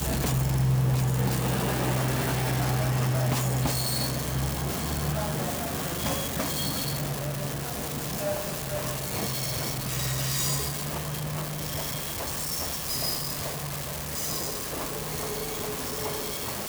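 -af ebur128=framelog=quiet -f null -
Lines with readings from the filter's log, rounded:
Integrated loudness:
  I:         -28.1 LUFS
  Threshold: -38.1 LUFS
Loudness range:
  LRA:         3.8 LU
  Threshold: -48.3 LUFS
  LRA low:   -29.7 LUFS
  LRA high:  -25.9 LUFS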